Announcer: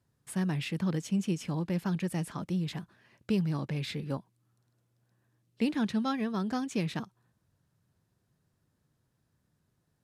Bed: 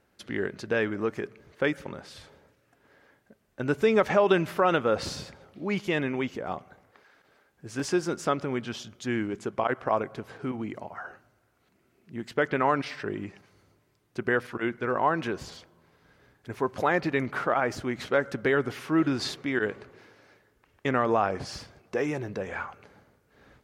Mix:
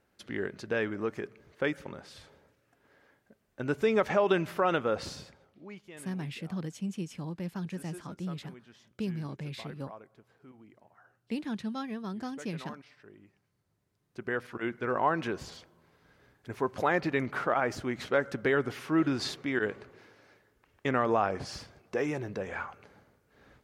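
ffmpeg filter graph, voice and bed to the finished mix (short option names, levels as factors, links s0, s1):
-filter_complex "[0:a]adelay=5700,volume=0.531[s0];[1:a]volume=5.62,afade=t=out:st=4.83:d=0.99:silence=0.133352,afade=t=in:st=13.65:d=1.29:silence=0.112202[s1];[s0][s1]amix=inputs=2:normalize=0"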